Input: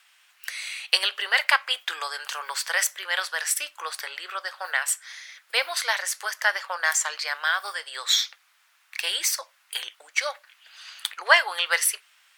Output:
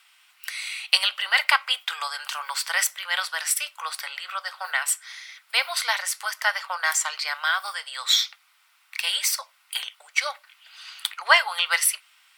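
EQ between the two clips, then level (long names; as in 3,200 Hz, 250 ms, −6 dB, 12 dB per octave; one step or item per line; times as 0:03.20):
high-pass filter 670 Hz 24 dB per octave
parametric band 6,500 Hz −5 dB 0.25 octaves
notch filter 1,700 Hz, Q 8.4
+2.0 dB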